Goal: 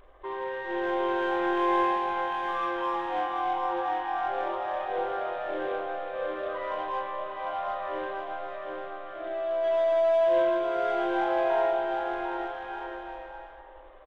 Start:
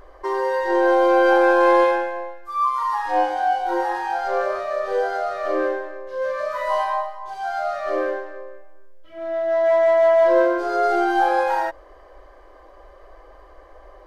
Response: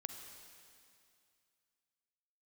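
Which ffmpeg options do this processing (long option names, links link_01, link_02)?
-filter_complex "[0:a]acrusher=bits=3:mode=log:mix=0:aa=0.000001,aresample=8000,aresample=44100[link_01];[1:a]atrim=start_sample=2205[link_02];[link_01][link_02]afir=irnorm=-1:irlink=0,asplit=2[link_03][link_04];[link_04]asoftclip=type=tanh:threshold=-27dB,volume=-8dB[link_05];[link_03][link_05]amix=inputs=2:normalize=0,aecho=1:1:750|1238|1554|1760|1894:0.631|0.398|0.251|0.158|0.1,volume=-9dB"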